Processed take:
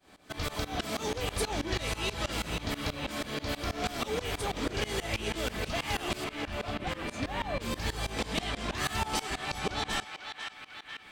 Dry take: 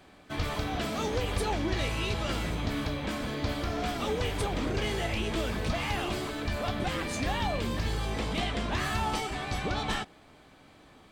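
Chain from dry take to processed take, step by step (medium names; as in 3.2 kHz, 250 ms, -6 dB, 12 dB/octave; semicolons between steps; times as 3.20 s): 6.24–7.61 s: treble shelf 3 kHz -11 dB; band-passed feedback delay 497 ms, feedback 71%, band-pass 2.1 kHz, level -6 dB; tremolo saw up 6.2 Hz, depth 95%; tone controls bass -3 dB, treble +6 dB; trim +2.5 dB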